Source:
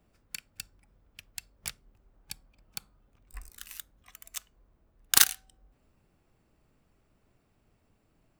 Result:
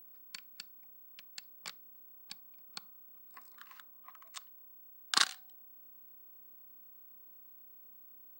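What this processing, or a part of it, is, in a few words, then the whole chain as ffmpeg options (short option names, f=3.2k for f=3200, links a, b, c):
old television with a line whistle: -filter_complex "[0:a]highpass=f=190:w=0.5412,highpass=f=190:w=1.3066,equalizer=f=1.1k:t=q:w=4:g=8,equalizer=f=2.6k:t=q:w=4:g=-4,equalizer=f=4.3k:t=q:w=4:g=4,equalizer=f=6.2k:t=q:w=4:g=-7,lowpass=f=7.3k:w=0.5412,lowpass=f=7.3k:w=1.3066,aeval=exprs='val(0)+0.00398*sin(2*PI*15734*n/s)':c=same,asettb=1/sr,asplit=3[a][b][c];[a]atrim=end=3.524[d];[b]atrim=start=3.52:end=4.3,asetpts=PTS-STARTPTS,afade=t=in:d=0.004:c=qsin,afade=t=out:st=0.776:d=0.004:c=qsin,equalizer=f=1k:t=o:w=1:g=7,equalizer=f=4k:t=o:w=1:g=-8,equalizer=f=8k:t=o:w=1:g=-10[e];[c]atrim=start=4.296[f];[d][e]acrossfade=d=0.004:c1=hsin:c2=qsin[g];[g][f]acrossfade=d=0.004:c1=qsin:c2=hsin,volume=-4.5dB"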